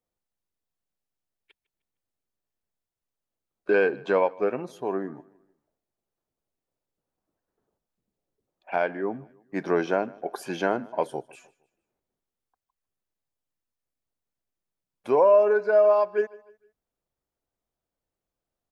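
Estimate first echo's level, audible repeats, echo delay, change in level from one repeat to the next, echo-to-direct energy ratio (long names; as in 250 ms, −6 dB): −23.0 dB, 2, 153 ms, −8.0 dB, −22.0 dB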